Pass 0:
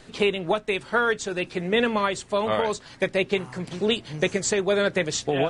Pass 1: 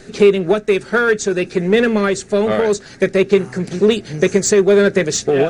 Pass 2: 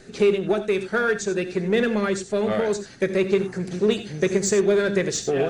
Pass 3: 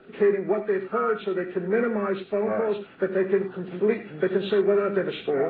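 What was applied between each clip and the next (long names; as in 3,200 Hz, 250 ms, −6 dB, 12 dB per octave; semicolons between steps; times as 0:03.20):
thirty-one-band graphic EQ 200 Hz +8 dB, 400 Hz +9 dB, 1,000 Hz −11 dB, 1,600 Hz +4 dB, 3,150 Hz −7 dB, 6,300 Hz +5 dB; in parallel at −5 dB: hard clipping −21 dBFS, distortion −6 dB; on the sum: level +3 dB
reverb whose tail is shaped and stops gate 110 ms rising, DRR 10.5 dB; level −7.5 dB
hearing-aid frequency compression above 1,000 Hz 1.5 to 1; three-way crossover with the lows and the highs turned down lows −16 dB, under 180 Hz, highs −22 dB, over 2,700 Hz; level −1.5 dB; AAC 24 kbit/s 24,000 Hz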